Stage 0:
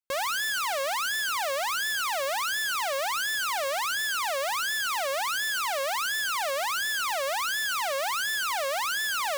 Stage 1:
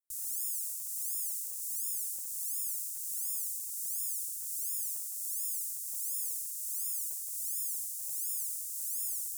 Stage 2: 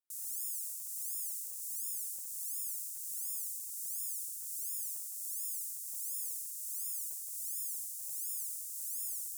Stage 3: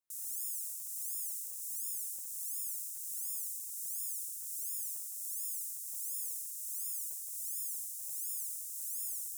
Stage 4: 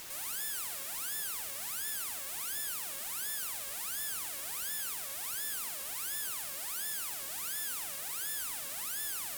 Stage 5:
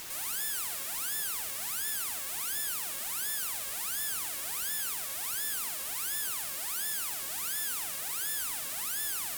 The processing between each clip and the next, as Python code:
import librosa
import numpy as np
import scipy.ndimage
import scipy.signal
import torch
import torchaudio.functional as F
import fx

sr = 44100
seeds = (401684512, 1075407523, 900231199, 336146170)

y1 = scipy.signal.sosfilt(scipy.signal.cheby2(4, 60, [200.0, 2700.0], 'bandstop', fs=sr, output='sos'), x)
y1 = fx.low_shelf(y1, sr, hz=160.0, db=-11.0)
y1 = y1 * librosa.db_to_amplitude(3.0)
y2 = scipy.signal.sosfilt(scipy.signal.butter(4, 89.0, 'highpass', fs=sr, output='sos'), y1)
y2 = y2 * librosa.db_to_amplitude(-3.5)
y3 = fx.notch(y2, sr, hz=4600.0, q=13.0)
y4 = fx.peak_eq(y3, sr, hz=960.0, db=-14.5, octaves=0.66)
y4 = fx.quant_dither(y4, sr, seeds[0], bits=8, dither='triangular')
y4 = fx.tube_stage(y4, sr, drive_db=32.0, bias=0.6)
y4 = y4 * librosa.db_to_amplitude(5.5)
y5 = fx.notch(y4, sr, hz=570.0, q=12.0)
y5 = y5 * librosa.db_to_amplitude(3.5)